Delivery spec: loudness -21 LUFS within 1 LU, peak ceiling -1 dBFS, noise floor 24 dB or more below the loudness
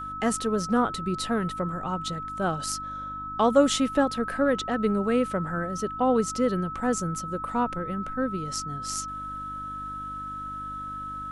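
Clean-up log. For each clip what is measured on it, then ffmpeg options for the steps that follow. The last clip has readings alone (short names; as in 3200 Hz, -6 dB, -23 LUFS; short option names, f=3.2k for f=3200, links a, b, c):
hum 50 Hz; harmonics up to 300 Hz; hum level -42 dBFS; steady tone 1300 Hz; tone level -33 dBFS; loudness -27.5 LUFS; peak -7.5 dBFS; loudness target -21.0 LUFS
-> -af "bandreject=f=50:t=h:w=4,bandreject=f=100:t=h:w=4,bandreject=f=150:t=h:w=4,bandreject=f=200:t=h:w=4,bandreject=f=250:t=h:w=4,bandreject=f=300:t=h:w=4"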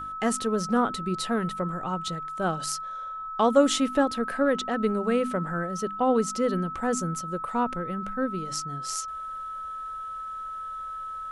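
hum none; steady tone 1300 Hz; tone level -33 dBFS
-> -af "bandreject=f=1.3k:w=30"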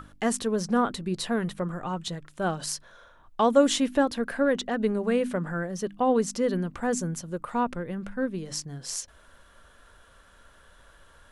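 steady tone none; loudness -27.5 LUFS; peak -8.0 dBFS; loudness target -21.0 LUFS
-> -af "volume=6.5dB"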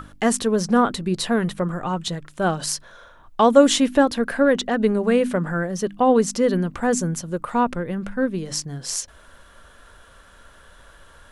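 loudness -21.0 LUFS; peak -1.5 dBFS; noise floor -50 dBFS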